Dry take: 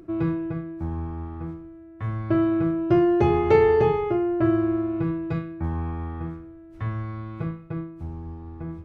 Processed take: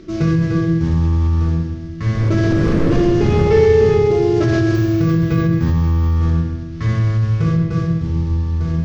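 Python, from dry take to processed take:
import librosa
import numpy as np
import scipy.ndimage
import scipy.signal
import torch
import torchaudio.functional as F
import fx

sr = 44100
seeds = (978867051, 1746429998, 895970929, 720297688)

p1 = fx.cvsd(x, sr, bps=32000)
p2 = fx.dmg_wind(p1, sr, seeds[0], corner_hz=510.0, level_db=-27.0, at=(2.14, 3.42), fade=0.02)
p3 = fx.peak_eq(p2, sr, hz=110.0, db=3.5, octaves=2.1)
p4 = fx.resample_bad(p3, sr, factor=2, down='filtered', up='hold', at=(4.75, 6.13))
p5 = fx.peak_eq(p4, sr, hz=780.0, db=-12.0, octaves=0.71)
p6 = fx.echo_filtered(p5, sr, ms=130, feedback_pct=51, hz=2000.0, wet_db=-8.0)
p7 = fx.room_shoebox(p6, sr, seeds[1], volume_m3=330.0, walls='mixed', distance_m=1.5)
p8 = fx.over_compress(p7, sr, threshold_db=-22.0, ratio=-1.0)
p9 = p7 + (p8 * 10.0 ** (2.0 / 20.0))
y = p9 * 10.0 ** (-1.0 / 20.0)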